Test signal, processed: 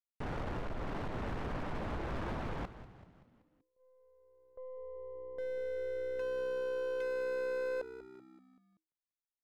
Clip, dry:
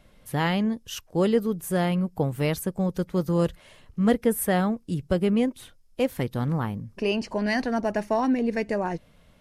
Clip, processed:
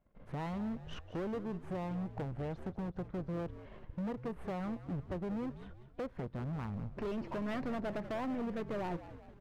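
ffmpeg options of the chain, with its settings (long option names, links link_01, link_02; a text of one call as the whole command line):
ffmpeg -i in.wav -filter_complex "[0:a]aeval=exprs='if(lt(val(0),0),0.447*val(0),val(0))':channel_layout=same,lowpass=1300,agate=range=-18dB:threshold=-57dB:ratio=16:detection=peak,acompressor=threshold=-34dB:ratio=4,asoftclip=type=hard:threshold=-38dB,asplit=6[link_01][link_02][link_03][link_04][link_05][link_06];[link_02]adelay=191,afreqshift=-64,volume=-13.5dB[link_07];[link_03]adelay=382,afreqshift=-128,volume=-19dB[link_08];[link_04]adelay=573,afreqshift=-192,volume=-24.5dB[link_09];[link_05]adelay=764,afreqshift=-256,volume=-30dB[link_10];[link_06]adelay=955,afreqshift=-320,volume=-35.6dB[link_11];[link_01][link_07][link_08][link_09][link_10][link_11]amix=inputs=6:normalize=0,volume=3.5dB" out.wav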